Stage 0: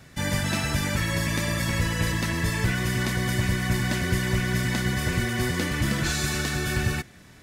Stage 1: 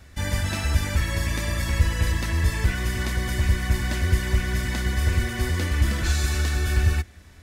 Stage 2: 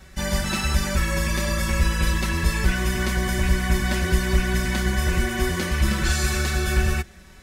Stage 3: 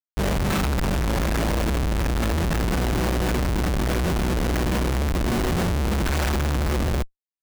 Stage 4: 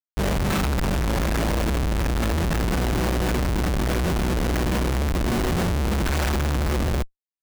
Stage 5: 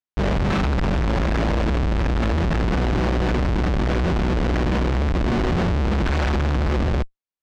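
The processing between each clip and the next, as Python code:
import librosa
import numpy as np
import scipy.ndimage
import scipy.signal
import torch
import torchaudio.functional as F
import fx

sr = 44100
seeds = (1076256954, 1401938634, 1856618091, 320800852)

y1 = fx.low_shelf_res(x, sr, hz=100.0, db=8.0, q=3.0)
y1 = y1 * librosa.db_to_amplitude(-2.0)
y2 = y1 + 0.85 * np.pad(y1, (int(5.3 * sr / 1000.0), 0))[:len(y1)]
y2 = y2 * librosa.db_to_amplitude(1.5)
y3 = fx.schmitt(y2, sr, flips_db=-23.5)
y4 = y3
y5 = fx.air_absorb(y4, sr, metres=150.0)
y5 = y5 * librosa.db_to_amplitude(2.5)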